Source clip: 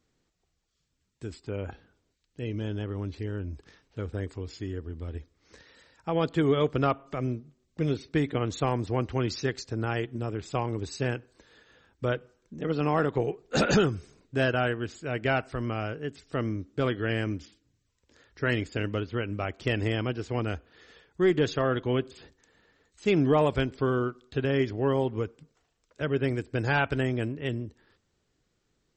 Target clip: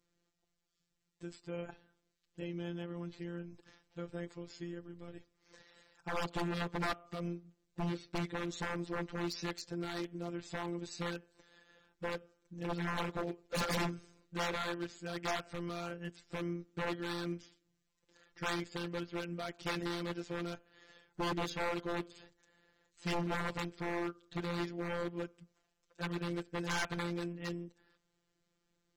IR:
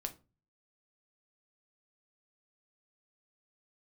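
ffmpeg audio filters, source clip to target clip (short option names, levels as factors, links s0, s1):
-af "afftfilt=real='hypot(re,im)*cos(PI*b)':imag='0':win_size=1024:overlap=0.75,aeval=exprs='0.0501*(abs(mod(val(0)/0.0501+3,4)-2)-1)':c=same,volume=0.708" -ar 48000 -c:a aac -b:a 48k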